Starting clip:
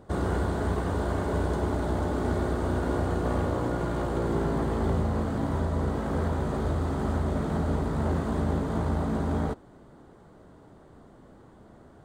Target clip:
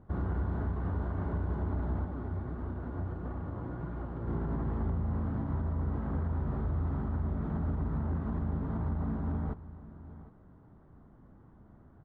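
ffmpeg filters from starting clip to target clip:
-filter_complex "[0:a]lowpass=1100,equalizer=f=510:t=o:w=1.9:g=-12.5,aecho=1:1:758:0.126,alimiter=level_in=1.06:limit=0.0631:level=0:latency=1:release=66,volume=0.944,asplit=3[s0][s1][s2];[s0]afade=t=out:st=2.04:d=0.02[s3];[s1]flanger=delay=2.3:depth=9.5:regen=55:speed=1.5:shape=triangular,afade=t=in:st=2.04:d=0.02,afade=t=out:st=4.26:d=0.02[s4];[s2]afade=t=in:st=4.26:d=0.02[s5];[s3][s4][s5]amix=inputs=3:normalize=0"

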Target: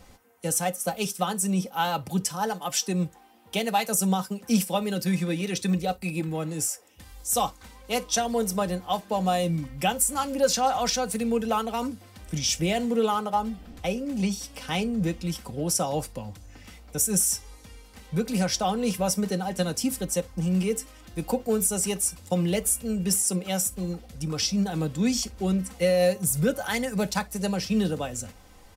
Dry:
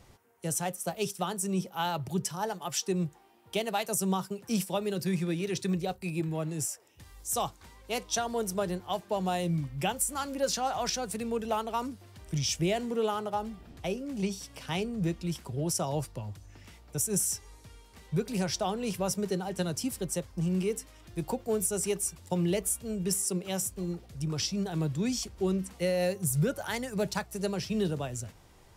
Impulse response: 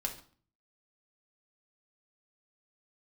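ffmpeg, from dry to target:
-filter_complex "[0:a]aecho=1:1:3.9:0.57,asplit=2[s0][s1];[1:a]atrim=start_sample=2205,atrim=end_sample=3087,highshelf=f=9100:g=9[s2];[s1][s2]afir=irnorm=-1:irlink=0,volume=0.251[s3];[s0][s3]amix=inputs=2:normalize=0,volume=1.33"

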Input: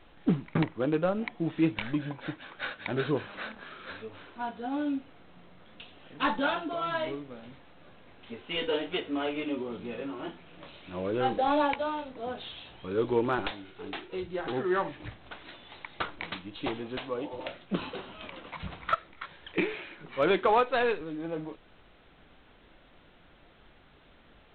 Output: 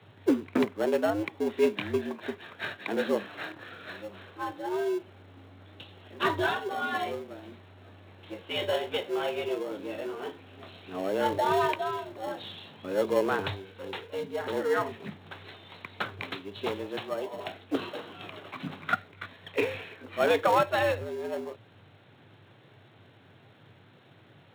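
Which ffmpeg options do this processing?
-filter_complex "[0:a]asplit=2[s0][s1];[s1]acrusher=samples=37:mix=1:aa=0.000001,volume=0.266[s2];[s0][s2]amix=inputs=2:normalize=0,afreqshift=95"

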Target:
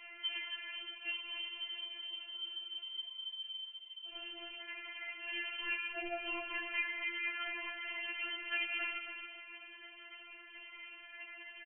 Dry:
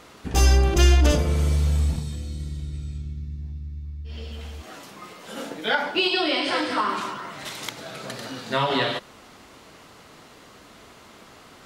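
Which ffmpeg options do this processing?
-filter_complex "[0:a]highpass=79,acompressor=threshold=0.0251:ratio=12,afftfilt=real='hypot(re,im)*cos(2*PI*random(0))':imag='hypot(re,im)*sin(2*PI*random(1))':win_size=512:overlap=0.75,lowpass=f=2800:t=q:w=0.5098,lowpass=f=2800:t=q:w=0.6013,lowpass=f=2800:t=q:w=0.9,lowpass=f=2800:t=q:w=2.563,afreqshift=-3300,aeval=exprs='val(0)*sin(2*PI*25*n/s)':c=same,asplit=2[s0][s1];[s1]adelay=15,volume=0.562[s2];[s0][s2]amix=inputs=2:normalize=0,asplit=2[s3][s4];[s4]aecho=0:1:272|544|816|1088:0.447|0.134|0.0402|0.0121[s5];[s3][s5]amix=inputs=2:normalize=0,afftfilt=real='re*4*eq(mod(b,16),0)':imag='im*4*eq(mod(b,16),0)':win_size=2048:overlap=0.75,volume=2.37"

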